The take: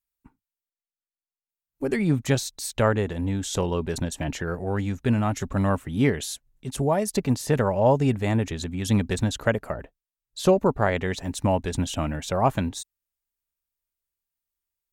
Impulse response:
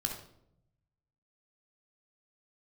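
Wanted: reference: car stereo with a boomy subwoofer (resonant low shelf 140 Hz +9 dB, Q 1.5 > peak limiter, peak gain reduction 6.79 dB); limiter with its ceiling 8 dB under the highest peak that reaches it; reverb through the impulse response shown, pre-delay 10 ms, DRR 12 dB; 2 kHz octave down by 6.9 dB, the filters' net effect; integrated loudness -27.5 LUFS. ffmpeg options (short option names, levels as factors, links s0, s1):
-filter_complex "[0:a]equalizer=f=2000:t=o:g=-9,alimiter=limit=0.158:level=0:latency=1,asplit=2[s0][s1];[1:a]atrim=start_sample=2205,adelay=10[s2];[s1][s2]afir=irnorm=-1:irlink=0,volume=0.2[s3];[s0][s3]amix=inputs=2:normalize=0,lowshelf=f=140:t=q:w=1.5:g=9,volume=0.562,alimiter=limit=0.141:level=0:latency=1"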